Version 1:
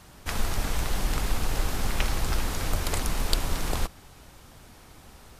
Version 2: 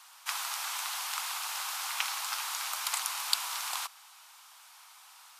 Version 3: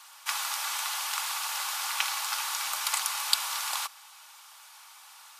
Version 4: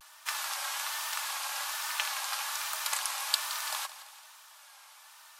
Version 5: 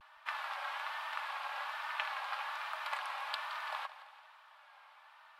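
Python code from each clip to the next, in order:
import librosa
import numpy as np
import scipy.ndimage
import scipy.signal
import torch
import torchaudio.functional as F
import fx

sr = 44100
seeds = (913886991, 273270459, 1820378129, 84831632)

y1 = scipy.signal.sosfilt(scipy.signal.butter(6, 900.0, 'highpass', fs=sr, output='sos'), x)
y1 = fx.peak_eq(y1, sr, hz=1800.0, db=-5.5, octaves=0.58)
y1 = y1 * 10.0 ** (1.5 / 20.0)
y2 = y1 + 0.35 * np.pad(y1, (int(3.5 * sr / 1000.0), 0))[:len(y1)]
y2 = y2 * 10.0 ** (3.0 / 20.0)
y3 = fx.small_body(y2, sr, hz=(610.0, 1700.0), ring_ms=45, db=9)
y3 = fx.vibrato(y3, sr, rate_hz=1.2, depth_cents=92.0)
y3 = fx.echo_feedback(y3, sr, ms=169, feedback_pct=53, wet_db=-15)
y3 = y3 * 10.0 ** (-3.5 / 20.0)
y4 = fx.air_absorb(y3, sr, metres=480.0)
y4 = y4 * 10.0 ** (1.5 / 20.0)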